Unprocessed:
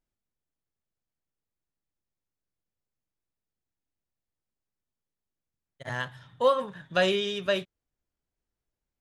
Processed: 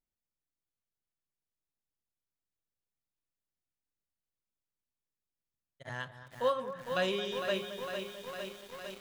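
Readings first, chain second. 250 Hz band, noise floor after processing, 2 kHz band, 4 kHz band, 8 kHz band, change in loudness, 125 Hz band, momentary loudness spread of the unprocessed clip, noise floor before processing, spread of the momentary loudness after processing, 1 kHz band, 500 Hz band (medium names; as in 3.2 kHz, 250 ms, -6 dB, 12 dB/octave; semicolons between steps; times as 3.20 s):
-6.0 dB, under -85 dBFS, -6.0 dB, -6.0 dB, -3.0 dB, -8.0 dB, -6.5 dB, 11 LU, under -85 dBFS, 13 LU, -6.0 dB, -6.0 dB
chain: echo whose repeats swap between lows and highs 219 ms, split 1.8 kHz, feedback 66%, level -12.5 dB; bit-crushed delay 455 ms, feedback 80%, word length 7-bit, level -7 dB; trim -7.5 dB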